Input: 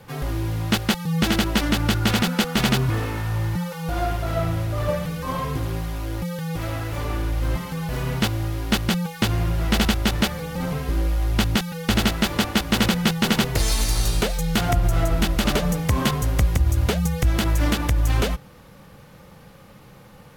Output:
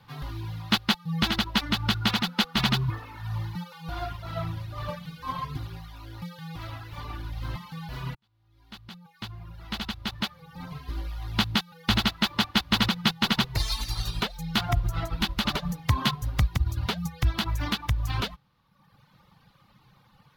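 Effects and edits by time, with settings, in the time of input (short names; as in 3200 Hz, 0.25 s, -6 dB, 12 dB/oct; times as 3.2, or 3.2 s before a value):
8.15–11.45 fade in
whole clip: reverb removal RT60 1.2 s; graphic EQ 125/500/1000/4000/8000 Hz +5/-8/+8/+10/-8 dB; upward expander 1.5:1, over -29 dBFS; gain -4 dB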